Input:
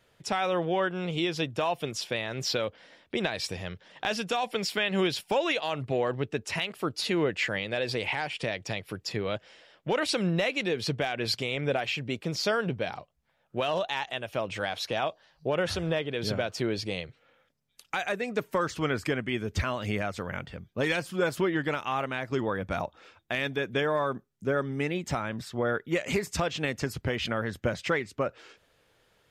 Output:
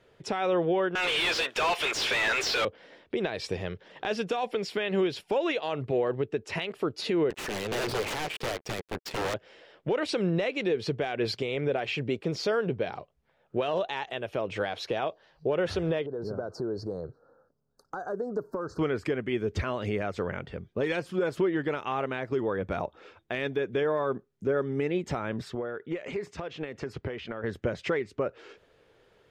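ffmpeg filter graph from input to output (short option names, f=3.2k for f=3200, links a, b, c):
-filter_complex "[0:a]asettb=1/sr,asplit=3[a][b][c];[a]atrim=end=0.954[d];[b]atrim=start=0.95:end=2.65,asetpts=PTS-STARTPTS,afade=t=in:d=0.004:c=qsin,afade=t=out:st=1.696:d=0.004:c=qsin,highpass=1.3k,asplit=2[e][f];[f]highpass=f=720:p=1,volume=35dB,asoftclip=type=tanh:threshold=-18dB[g];[e][g]amix=inputs=2:normalize=0,lowpass=f=4.7k:p=1,volume=-6dB[h];[c]atrim=start=2.646[i];[d][h]acrossfade=d=0.004:c1=hsin:c2=qsin[j];[j][i]acrossfade=d=0.004:c1=qsin:c2=hsin,asettb=1/sr,asplit=3[k][l][m];[k]atrim=end=7.304[n];[l]atrim=start=7.3:end=9.34,asetpts=PTS-STARTPTS,afade=t=in:d=0.004:c=qsin,afade=t=out:st=2.036:d=0.004:c=qsin,aeval=exprs='(mod(22.4*val(0)+1,2)-1)/22.4':c=same,acrusher=bits=5:mix=0:aa=0.5[o];[m]atrim=start=9.336[p];[n][o]acrossfade=d=0.004:c1=hsin:c2=qsin[q];[q][p]acrossfade=d=0.004:c1=qsin:c2=hsin,asettb=1/sr,asplit=3[r][s][t];[r]atrim=end=16.064[u];[s]atrim=start=16.06:end=18.79,asetpts=PTS-STARTPTS,afade=t=in:d=0.004:c=qsin,afade=t=out:st=2.726:d=0.004:c=qsin,asuperstop=centerf=2600:order=12:qfactor=0.94,equalizer=f=8.4k:w=0.46:g=-8.5,acompressor=threshold=-36dB:ratio=4:attack=3.2:release=140:knee=1:detection=peak[v];[t]atrim=start=18.786[w];[u][v]acrossfade=d=0.004:c1=hsin:c2=qsin[x];[x][w]acrossfade=d=0.004:c1=qsin:c2=hsin,asettb=1/sr,asplit=3[y][z][aa];[y]atrim=end=25.554[ab];[z]atrim=start=25.55:end=27.44,asetpts=PTS-STARTPTS,afade=t=in:d=0.004:c=qsin,afade=t=out:st=1.886:d=0.004:c=qsin,highpass=f=640:p=1,acompressor=threshold=-37dB:ratio=6:attack=3.2:release=140:knee=1:detection=peak,aemphasis=mode=reproduction:type=bsi[ac];[aa]atrim=start=27.436[ad];[ab][ac]acrossfade=d=0.004:c1=hsin:c2=qsin[ae];[ae][ad]acrossfade=d=0.004:c1=qsin:c2=hsin,equalizer=f=410:t=o:w=0.68:g=8,alimiter=limit=-21dB:level=0:latency=1:release=317,aemphasis=mode=reproduction:type=50kf,volume=2.5dB"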